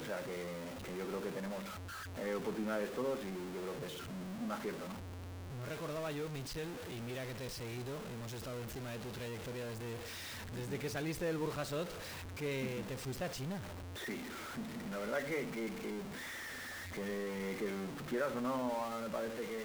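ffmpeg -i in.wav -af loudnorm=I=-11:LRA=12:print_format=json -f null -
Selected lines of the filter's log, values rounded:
"input_i" : "-40.9",
"input_tp" : "-24.6",
"input_lra" : "3.5",
"input_thresh" : "-50.9",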